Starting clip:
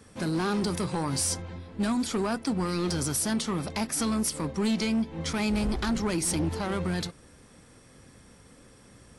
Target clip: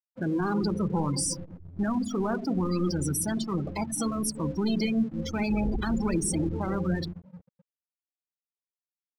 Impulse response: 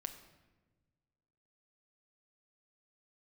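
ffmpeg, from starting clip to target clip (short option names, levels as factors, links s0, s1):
-filter_complex "[1:a]atrim=start_sample=2205[s0];[0:a][s0]afir=irnorm=-1:irlink=0,afftfilt=real='re*gte(hypot(re,im),0.0355)':imag='im*gte(hypot(re,im),0.0355)':win_size=1024:overlap=0.75,aeval=exprs='sgn(val(0))*max(abs(val(0))-0.00168,0)':c=same,volume=1.5"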